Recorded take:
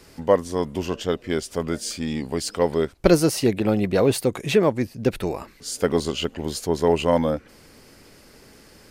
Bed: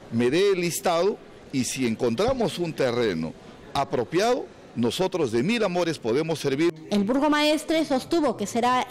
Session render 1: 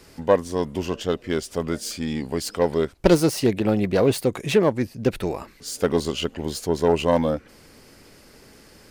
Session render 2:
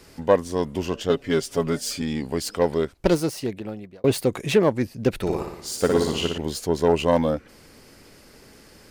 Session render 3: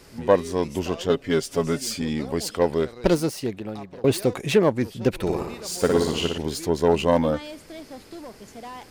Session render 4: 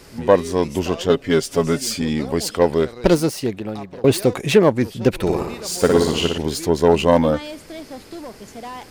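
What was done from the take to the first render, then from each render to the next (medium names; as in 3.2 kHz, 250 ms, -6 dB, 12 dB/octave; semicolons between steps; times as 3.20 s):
self-modulated delay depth 0.14 ms
1.09–2.02 s: comb 7.2 ms, depth 77%; 2.62–4.04 s: fade out; 5.21–6.38 s: flutter echo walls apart 10.1 m, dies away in 0.79 s
add bed -17 dB
trim +5 dB; peak limiter -1 dBFS, peak gain reduction 1.5 dB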